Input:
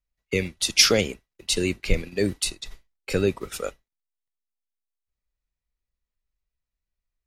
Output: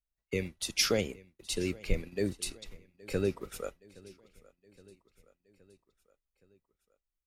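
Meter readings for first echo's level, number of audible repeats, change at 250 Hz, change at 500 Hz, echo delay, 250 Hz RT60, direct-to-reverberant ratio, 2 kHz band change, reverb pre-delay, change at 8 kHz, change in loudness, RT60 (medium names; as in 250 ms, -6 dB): -22.5 dB, 3, -7.5 dB, -7.5 dB, 819 ms, no reverb, no reverb, -11.0 dB, no reverb, -11.0 dB, -10.0 dB, no reverb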